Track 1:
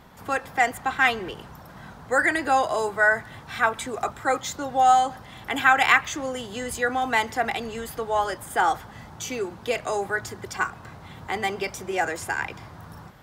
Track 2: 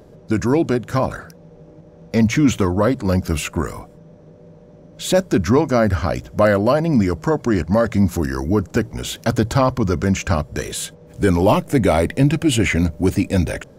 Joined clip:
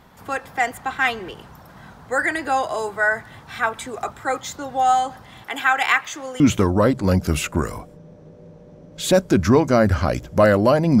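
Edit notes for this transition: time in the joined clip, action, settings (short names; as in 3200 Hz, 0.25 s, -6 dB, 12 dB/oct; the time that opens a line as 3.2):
track 1
5.43–6.4 HPF 400 Hz 6 dB/oct
6.4 switch to track 2 from 2.41 s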